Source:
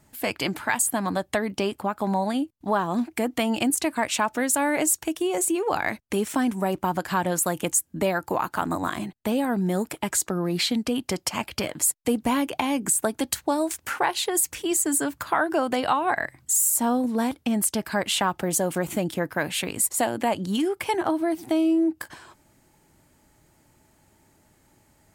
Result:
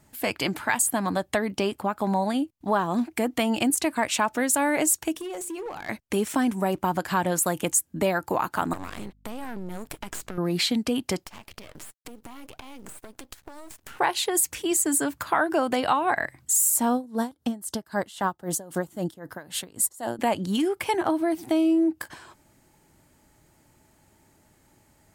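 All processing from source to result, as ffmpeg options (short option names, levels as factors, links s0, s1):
-filter_complex "[0:a]asettb=1/sr,asplit=3[s0][s1][s2];[s0]atrim=end=5.124[s3];[s1]atrim=start=5.12:end=5.89,asetpts=PTS-STARTPTS,afade=t=in:d=0.004:c=qsin,afade=t=out:st=0.766:d=0.004:c=qsin,bandreject=f=50:t=h:w=6,bandreject=f=100:t=h:w=6,bandreject=f=150:t=h:w=6,bandreject=f=200:t=h:w=6,bandreject=f=250:t=h:w=6,bandreject=f=300:t=h:w=6,bandreject=f=350:t=h:w=6,acompressor=threshold=0.0355:ratio=16:attack=3.2:release=140:knee=1:detection=peak,volume=31.6,asoftclip=hard,volume=0.0316[s4];[s2]atrim=start=5.886[s5];[s3][s4]acrossfade=d=0.004:c1=hsin:c2=qsin[s6];[s6][s5]acrossfade=d=0.004:c1=qsin:c2=hsin,asettb=1/sr,asplit=3[s7][s8][s9];[s7]atrim=end=8.734[s10];[s8]atrim=start=8.73:end=10.38,asetpts=PTS-STARTPTS,afade=t=in:d=0.004:c=qsin,afade=t=out:st=1.646:d=0.004:c=qsin,aeval=exprs='max(val(0),0)':c=same,acompressor=threshold=0.0355:ratio=10:attack=3.2:release=140:knee=1:detection=peak,aeval=exprs='val(0)+0.00112*(sin(2*PI*50*n/s)+sin(2*PI*2*50*n/s)/2+sin(2*PI*3*50*n/s)/3+sin(2*PI*4*50*n/s)/4+sin(2*PI*5*50*n/s)/5)':c=same[s11];[s9]atrim=start=10.376[s12];[s10][s11]acrossfade=d=0.004:c1=hsin:c2=qsin[s13];[s13][s12]acrossfade=d=0.004:c1=qsin:c2=hsin,asettb=1/sr,asplit=3[s14][s15][s16];[s14]atrim=end=11.244[s17];[s15]atrim=start=11.24:end=13.99,asetpts=PTS-STARTPTS,afade=t=in:d=0.004:c=qsin,afade=t=out:st=2.746:d=0.004:c=qsin,aeval=exprs='max(val(0),0)':c=same,acompressor=threshold=0.0141:ratio=16:attack=3.2:release=140:knee=1:detection=peak,acrusher=bits=6:mode=log:mix=0:aa=0.000001[s18];[s16]atrim=start=13.986[s19];[s17][s18]acrossfade=d=0.004:c1=hsin:c2=qsin[s20];[s20][s19]acrossfade=d=0.004:c1=qsin:c2=hsin,asettb=1/sr,asplit=3[s21][s22][s23];[s21]atrim=end=16.944[s24];[s22]atrim=start=16.94:end=20.19,asetpts=PTS-STARTPTS,afade=t=in:d=0.004:c=qsin,afade=t=out:st=3.246:d=0.004:c=qsin,equalizer=f=2400:w=3.5:g=-13.5,aeval=exprs='val(0)*pow(10,-20*(0.5-0.5*cos(2*PI*3.8*n/s))/20)':c=same[s25];[s23]atrim=start=20.186[s26];[s24][s25]acrossfade=d=0.004:c1=hsin:c2=qsin[s27];[s27][s26]acrossfade=d=0.004:c1=qsin:c2=hsin"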